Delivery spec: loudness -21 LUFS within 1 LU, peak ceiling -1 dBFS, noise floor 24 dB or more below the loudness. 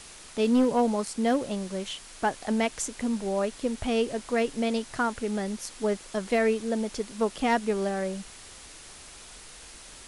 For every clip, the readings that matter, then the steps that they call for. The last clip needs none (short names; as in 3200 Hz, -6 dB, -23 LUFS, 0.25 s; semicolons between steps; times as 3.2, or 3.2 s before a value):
clipped 0.3%; flat tops at -16.5 dBFS; noise floor -47 dBFS; noise floor target -52 dBFS; loudness -28.0 LUFS; peak -16.5 dBFS; loudness target -21.0 LUFS
-> clip repair -16.5 dBFS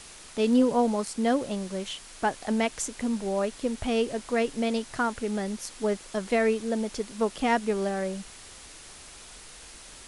clipped 0.0%; noise floor -47 dBFS; noise floor target -52 dBFS
-> denoiser 6 dB, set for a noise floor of -47 dBFS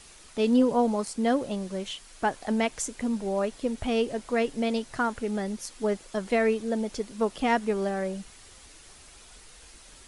noise floor -51 dBFS; noise floor target -52 dBFS
-> denoiser 6 dB, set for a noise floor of -51 dBFS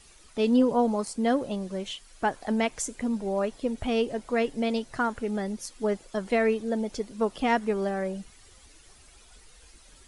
noise floor -55 dBFS; loudness -28.0 LUFS; peak -12.0 dBFS; loudness target -21.0 LUFS
-> gain +7 dB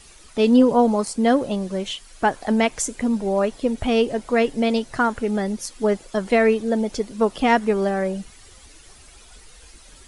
loudness -21.0 LUFS; peak -5.0 dBFS; noise floor -48 dBFS